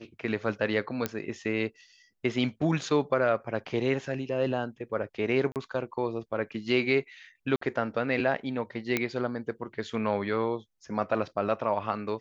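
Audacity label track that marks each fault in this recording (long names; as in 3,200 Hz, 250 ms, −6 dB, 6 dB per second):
1.060000	1.060000	click −13 dBFS
5.520000	5.560000	drop-out 38 ms
7.560000	7.610000	drop-out 54 ms
8.970000	8.970000	click −11 dBFS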